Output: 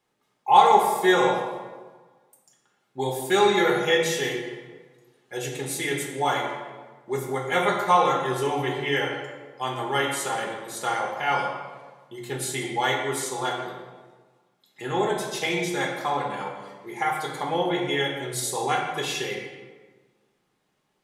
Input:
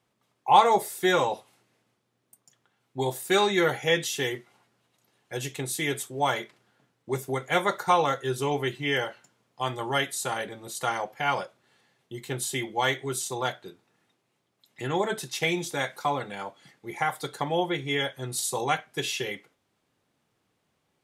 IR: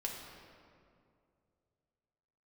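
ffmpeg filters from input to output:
-filter_complex "[0:a]equalizer=frequency=92:width=2.3:gain=-11[link_01];[1:a]atrim=start_sample=2205,asetrate=83790,aresample=44100[link_02];[link_01][link_02]afir=irnorm=-1:irlink=0,volume=6.5dB"

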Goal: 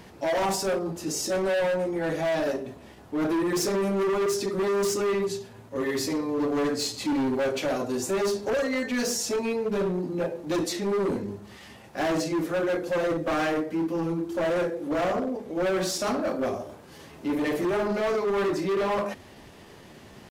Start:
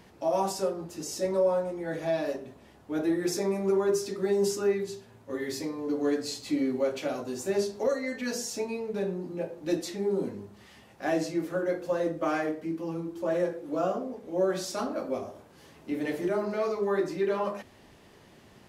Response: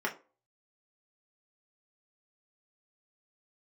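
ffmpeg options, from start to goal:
-af "atempo=0.92,asoftclip=type=hard:threshold=-30dB,volume=7dB"

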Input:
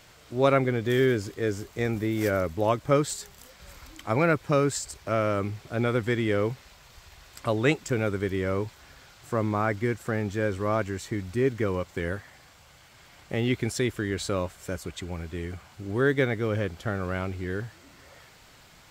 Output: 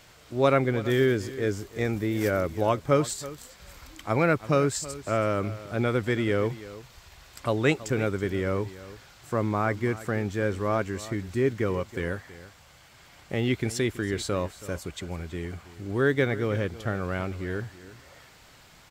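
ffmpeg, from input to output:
ffmpeg -i in.wav -af "aecho=1:1:326:0.15" out.wav

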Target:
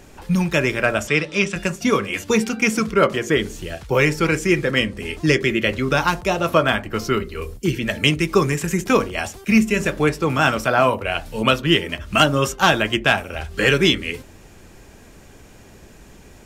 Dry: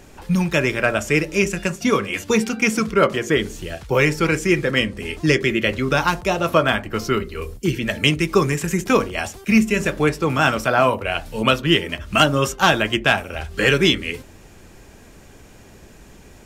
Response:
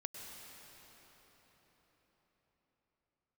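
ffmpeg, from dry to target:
-filter_complex "[0:a]asettb=1/sr,asplit=3[link_01][link_02][link_03];[link_01]atrim=end=1.074[link_04];[link_02]atrim=start=1.07:end=1.56,asetpts=PTS-STARTPTS,afade=type=in:duration=0.004:curve=qsin,afade=type=out:start_time=0.486:duration=0.004:curve=qsin,highpass=130,equalizer=frequency=350:width_type=q:width=4:gain=-8,equalizer=frequency=1200:width_type=q:width=4:gain=6,equalizer=frequency=3500:width_type=q:width=4:gain=10,equalizer=frequency=6800:width_type=q:width=4:gain=-8,lowpass=frequency=8100:width=0.5412,lowpass=frequency=8100:width=1.3066[link_05];[link_03]atrim=start=1.556[link_06];[link_04][link_05]acrossfade=duration=0.004:curve1=hsin:curve2=qsin[link_07];[link_07][link_06]acrossfade=duration=0.004:curve1=qsin:curve2=hsin"

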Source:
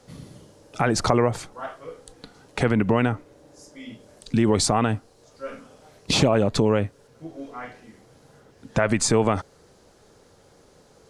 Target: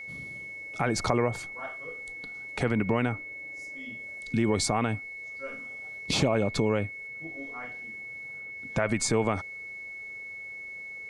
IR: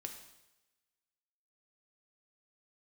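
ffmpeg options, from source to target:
-af "aeval=exprs='val(0)+0.0251*sin(2*PI*2200*n/s)':channel_layout=same,volume=-6dB"

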